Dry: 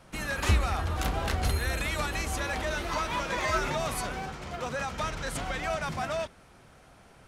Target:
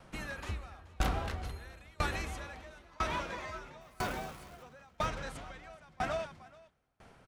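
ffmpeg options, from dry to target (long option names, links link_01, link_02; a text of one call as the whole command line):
ffmpeg -i in.wav -filter_complex "[0:a]highshelf=frequency=5800:gain=-7.5,asettb=1/sr,asplit=3[link_01][link_02][link_03];[link_01]atrim=end=3.814[link_04];[link_02]atrim=start=3.81:end=4.63,asetpts=PTS-STARTPTS,afade=type=in:duration=0.004:curve=qsin,afade=type=out:start_time=0.816:duration=0.004:curve=qsin,acrusher=bits=8:dc=4:mix=0:aa=0.000001[link_05];[link_03]atrim=start=4.626[link_06];[link_04][link_05]acrossfade=duration=0.004:curve1=hsin:curve2=qsin[link_07];[link_07][link_06]acrossfade=duration=0.004:curve1=qsin:curve2=hsin,asplit=2[link_08][link_09];[link_09]aecho=0:1:428:0.355[link_10];[link_08][link_10]amix=inputs=2:normalize=0,aeval=exprs='val(0)*pow(10,-29*if(lt(mod(1*n/s,1),2*abs(1)/1000),1-mod(1*n/s,1)/(2*abs(1)/1000),(mod(1*n/s,1)-2*abs(1)/1000)/(1-2*abs(1)/1000))/20)':channel_layout=same" out.wav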